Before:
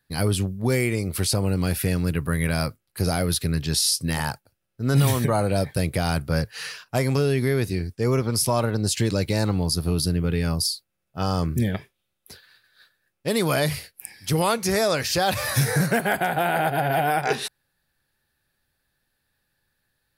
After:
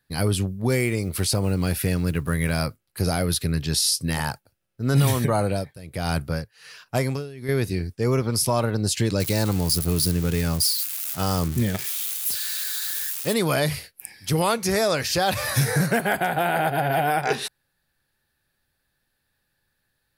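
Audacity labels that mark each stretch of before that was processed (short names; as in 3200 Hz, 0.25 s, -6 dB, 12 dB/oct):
0.740000	2.600000	block floating point 7-bit
5.410000	7.490000	tremolo 1.3 Hz, depth 88%
9.200000	13.340000	switching spikes of -20 dBFS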